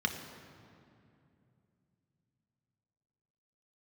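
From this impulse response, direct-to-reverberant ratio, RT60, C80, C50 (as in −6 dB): 4.0 dB, 2.6 s, 8.5 dB, 7.5 dB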